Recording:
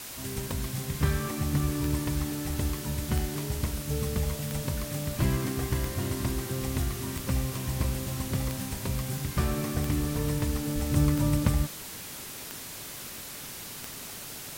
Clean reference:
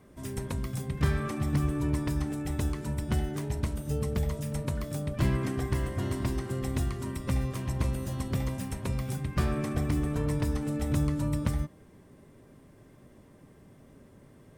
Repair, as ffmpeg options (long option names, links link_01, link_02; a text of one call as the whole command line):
ffmpeg -i in.wav -filter_complex "[0:a]adeclick=threshold=4,asplit=3[link_01][link_02][link_03];[link_01]afade=type=out:start_time=10.74:duration=0.02[link_04];[link_02]highpass=frequency=140:width=0.5412,highpass=frequency=140:width=1.3066,afade=type=in:start_time=10.74:duration=0.02,afade=type=out:start_time=10.86:duration=0.02[link_05];[link_03]afade=type=in:start_time=10.86:duration=0.02[link_06];[link_04][link_05][link_06]amix=inputs=3:normalize=0,afwtdn=0.01,asetnsamples=nb_out_samples=441:pad=0,asendcmd='10.96 volume volume -4dB',volume=0dB" out.wav